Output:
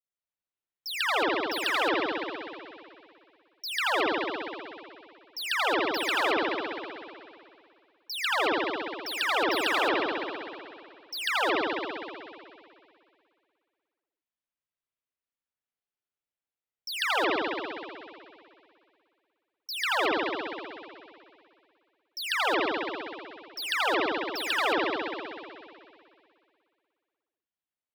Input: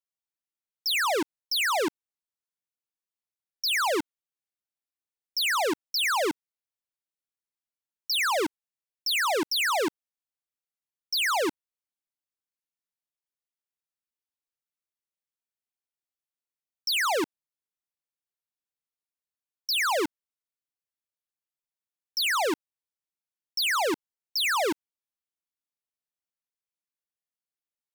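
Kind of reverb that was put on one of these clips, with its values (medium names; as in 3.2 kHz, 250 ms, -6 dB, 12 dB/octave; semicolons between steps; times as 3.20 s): spring tank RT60 2.3 s, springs 59 ms, chirp 55 ms, DRR -9.5 dB; trim -9 dB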